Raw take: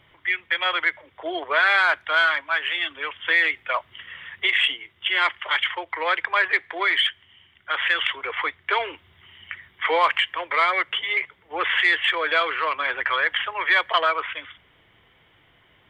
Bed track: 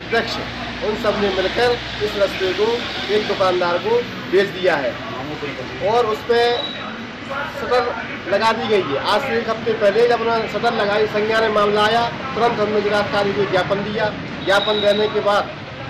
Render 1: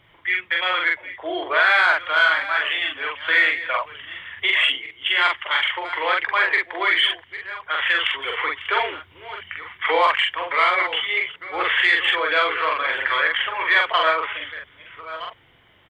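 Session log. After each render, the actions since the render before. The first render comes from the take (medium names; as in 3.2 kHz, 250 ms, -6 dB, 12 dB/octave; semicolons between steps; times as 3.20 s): chunks repeated in reverse 695 ms, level -13.5 dB; doubling 44 ms -2 dB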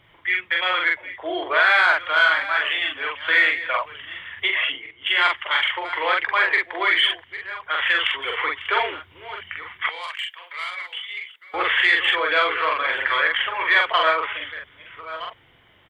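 4.48–5.07 s: distance through air 310 m; 9.89–11.54 s: differentiator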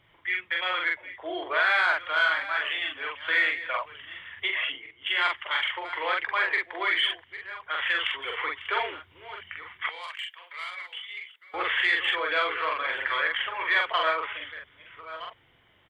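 trim -6.5 dB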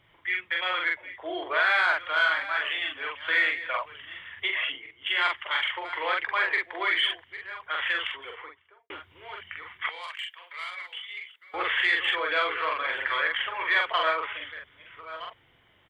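7.77–8.90 s: studio fade out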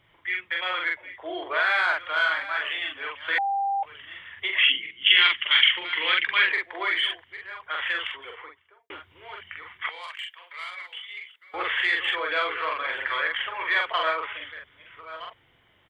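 3.38–3.83 s: bleep 793 Hz -22.5 dBFS; 4.58–6.52 s: FFT filter 120 Hz 0 dB, 180 Hz +13 dB, 720 Hz -10 dB, 3.1 kHz +14 dB, 6.6 kHz -9 dB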